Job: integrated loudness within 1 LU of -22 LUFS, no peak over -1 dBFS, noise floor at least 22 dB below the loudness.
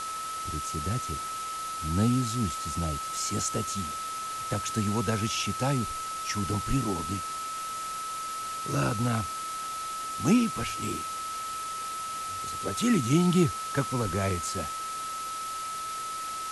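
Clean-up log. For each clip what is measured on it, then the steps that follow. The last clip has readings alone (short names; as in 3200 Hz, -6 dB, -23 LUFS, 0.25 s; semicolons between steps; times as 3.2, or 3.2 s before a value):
steady tone 1300 Hz; tone level -33 dBFS; noise floor -35 dBFS; noise floor target -52 dBFS; loudness -30.0 LUFS; peak -11.5 dBFS; loudness target -22.0 LUFS
-> notch 1300 Hz, Q 30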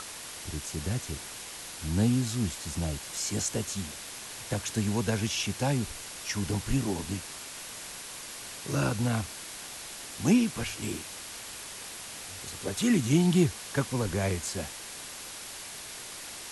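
steady tone none; noise floor -42 dBFS; noise floor target -54 dBFS
-> noise print and reduce 12 dB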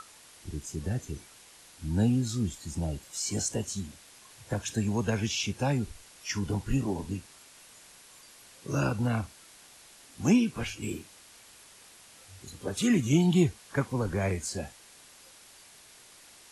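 noise floor -54 dBFS; loudness -30.0 LUFS; peak -12.0 dBFS; loudness target -22.0 LUFS
-> gain +8 dB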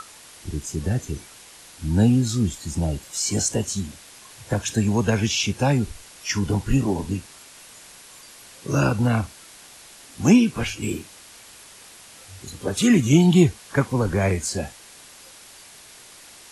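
loudness -22.0 LUFS; peak -4.0 dBFS; noise floor -46 dBFS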